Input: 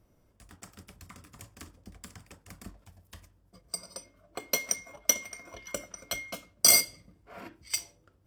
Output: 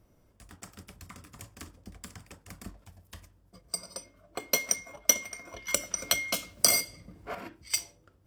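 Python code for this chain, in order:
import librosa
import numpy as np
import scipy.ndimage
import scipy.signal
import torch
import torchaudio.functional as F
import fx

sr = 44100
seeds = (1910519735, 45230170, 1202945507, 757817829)

y = fx.band_squash(x, sr, depth_pct=100, at=(5.68, 7.35))
y = y * 10.0 ** (2.0 / 20.0)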